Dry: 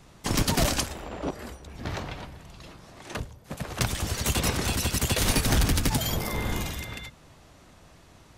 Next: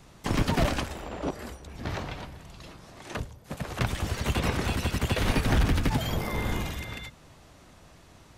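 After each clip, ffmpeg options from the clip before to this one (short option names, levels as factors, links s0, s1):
-filter_complex "[0:a]acrossover=split=3300[s0][s1];[s1]acompressor=threshold=0.00794:ratio=4:attack=1:release=60[s2];[s0][s2]amix=inputs=2:normalize=0"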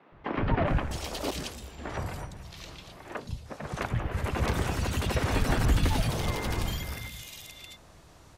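-filter_complex "[0:a]acrossover=split=220|2600[s0][s1][s2];[s0]adelay=120[s3];[s2]adelay=670[s4];[s3][s1][s4]amix=inputs=3:normalize=0"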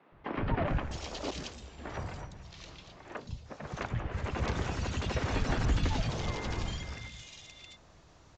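-af "aresample=16000,aresample=44100,volume=0.596"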